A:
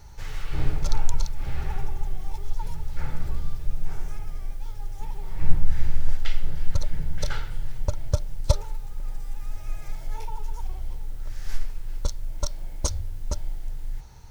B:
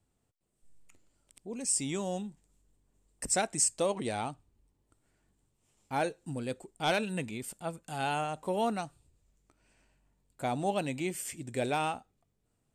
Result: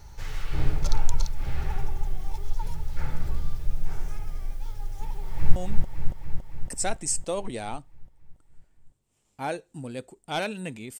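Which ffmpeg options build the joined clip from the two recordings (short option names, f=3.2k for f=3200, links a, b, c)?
-filter_complex "[0:a]apad=whole_dur=10.99,atrim=end=10.99,atrim=end=5.562[a];[1:a]atrim=start=2.078:end=7.51[b];[a][b]acrossfade=d=0.004:c1=hsin:c2=hsin,asplit=2[c][d];[d]afade=t=in:st=5.05:d=0.01,afade=t=out:st=5.56:d=0.01,aecho=0:1:280|560|840|1120|1400|1680|1960|2240|2520|2800|3080|3360:0.668344|0.467841|0.327489|0.229242|0.160469|0.112329|0.07863|0.055041|0.0385287|0.0269701|0.0188791|0.0132153[e];[c][e]amix=inputs=2:normalize=0"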